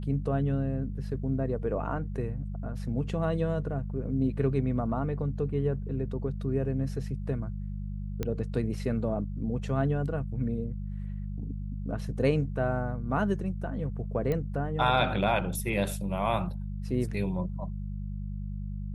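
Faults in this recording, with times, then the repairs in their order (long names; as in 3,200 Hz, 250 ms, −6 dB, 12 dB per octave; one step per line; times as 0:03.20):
mains hum 50 Hz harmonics 4 −35 dBFS
0:08.23: click −18 dBFS
0:14.32: click −19 dBFS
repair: click removal
hum removal 50 Hz, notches 4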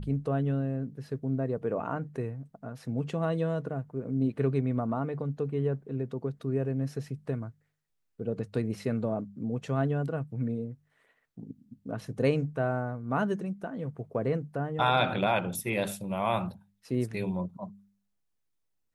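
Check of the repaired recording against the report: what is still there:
none of them is left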